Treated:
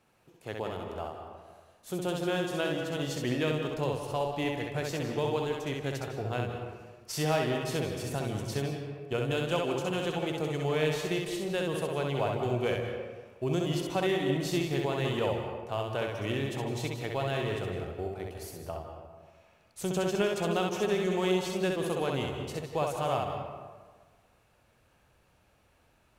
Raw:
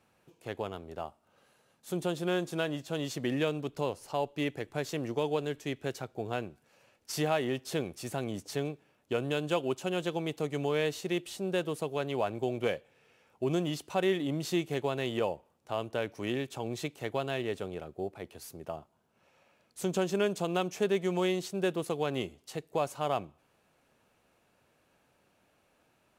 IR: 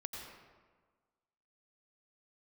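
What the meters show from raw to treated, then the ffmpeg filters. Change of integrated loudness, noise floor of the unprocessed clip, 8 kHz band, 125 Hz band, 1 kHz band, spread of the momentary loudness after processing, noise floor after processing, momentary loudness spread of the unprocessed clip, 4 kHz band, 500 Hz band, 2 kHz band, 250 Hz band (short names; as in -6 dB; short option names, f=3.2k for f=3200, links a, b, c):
+1.5 dB, -71 dBFS, +2.0 dB, +5.0 dB, +2.5 dB, 11 LU, -66 dBFS, 10 LU, +2.5 dB, +1.5 dB, +2.5 dB, +1.0 dB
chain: -filter_complex "[0:a]asplit=2[a][b];[1:a]atrim=start_sample=2205,adelay=65[c];[b][c]afir=irnorm=-1:irlink=0,volume=0.5dB[d];[a][d]amix=inputs=2:normalize=0,asubboost=boost=3.5:cutoff=110"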